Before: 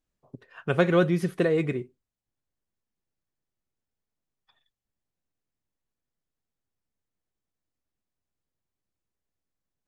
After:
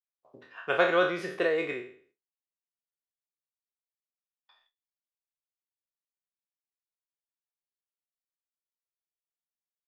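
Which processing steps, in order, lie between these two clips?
spectral trails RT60 0.50 s; three-band isolator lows -22 dB, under 420 Hz, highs -15 dB, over 5900 Hz; gate with hold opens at -58 dBFS

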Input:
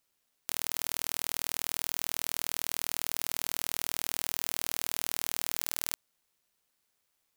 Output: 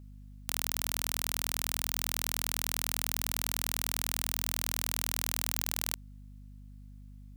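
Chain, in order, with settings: hum 50 Hz, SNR 14 dB

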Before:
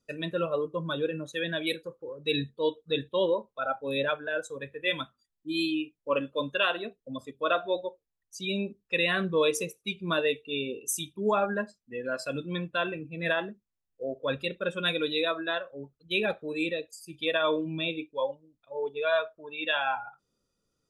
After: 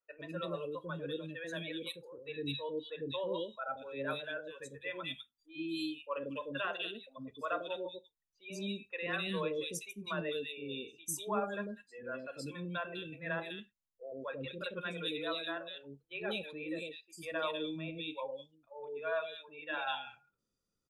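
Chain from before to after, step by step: three bands offset in time mids, lows, highs 0.1/0.2 s, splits 500/2500 Hz; gain -7.5 dB

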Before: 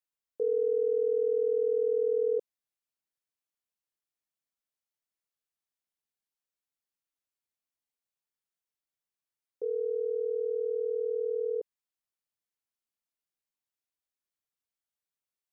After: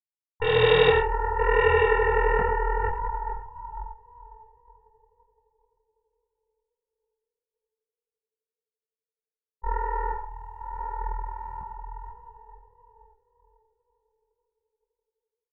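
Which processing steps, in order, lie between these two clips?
expander -23 dBFS; diffused feedback echo 0.561 s, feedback 56%, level -3.5 dB; added harmonics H 7 -16 dB, 8 -8 dB, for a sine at -24 dBFS; AGC gain up to 9 dB; on a send: echo 93 ms -10 dB; on the sum: detuned doubles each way 45 cents; gain +5.5 dB

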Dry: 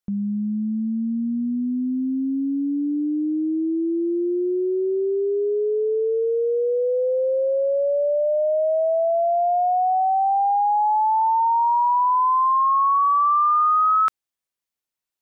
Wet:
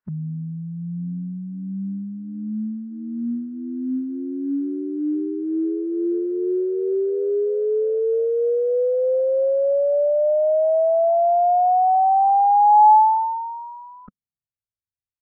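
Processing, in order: formant-preserving pitch shift -4.5 st; low-pass sweep 1500 Hz -> 100 Hz, 12.46–14.65

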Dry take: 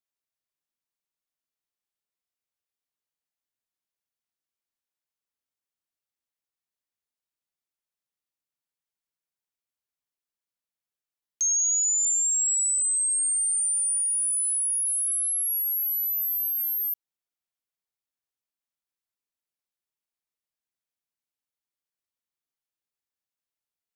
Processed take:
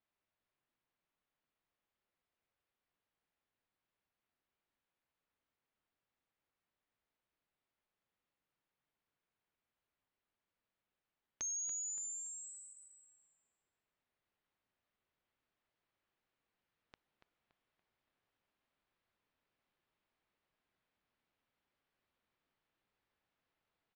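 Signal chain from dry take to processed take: vocal rider; air absorption 350 m; on a send: darkening echo 0.285 s, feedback 43%, low-pass 4700 Hz, level -9 dB; on the sum: downsampling 16000 Hz; gain +10.5 dB

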